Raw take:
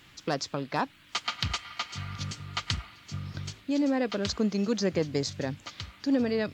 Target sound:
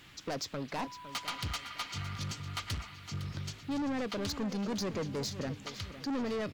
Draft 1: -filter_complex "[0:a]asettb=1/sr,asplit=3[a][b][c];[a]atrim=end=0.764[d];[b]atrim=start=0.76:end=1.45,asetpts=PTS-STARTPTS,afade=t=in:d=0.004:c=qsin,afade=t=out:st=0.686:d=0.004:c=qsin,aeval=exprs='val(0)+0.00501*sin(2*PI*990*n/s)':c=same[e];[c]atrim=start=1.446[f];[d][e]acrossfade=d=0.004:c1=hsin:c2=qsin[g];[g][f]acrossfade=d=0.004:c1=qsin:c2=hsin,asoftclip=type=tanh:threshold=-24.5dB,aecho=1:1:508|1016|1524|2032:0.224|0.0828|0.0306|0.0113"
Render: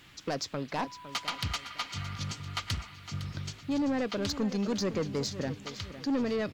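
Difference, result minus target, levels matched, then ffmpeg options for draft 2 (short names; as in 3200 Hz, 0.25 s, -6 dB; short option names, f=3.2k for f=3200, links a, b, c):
soft clip: distortion -6 dB
-filter_complex "[0:a]asettb=1/sr,asplit=3[a][b][c];[a]atrim=end=0.764[d];[b]atrim=start=0.76:end=1.45,asetpts=PTS-STARTPTS,afade=t=in:d=0.004:c=qsin,afade=t=out:st=0.686:d=0.004:c=qsin,aeval=exprs='val(0)+0.00501*sin(2*PI*990*n/s)':c=same[e];[c]atrim=start=1.446[f];[d][e]acrossfade=d=0.004:c1=hsin:c2=qsin[g];[g][f]acrossfade=d=0.004:c1=qsin:c2=hsin,asoftclip=type=tanh:threshold=-31.5dB,aecho=1:1:508|1016|1524|2032:0.224|0.0828|0.0306|0.0113"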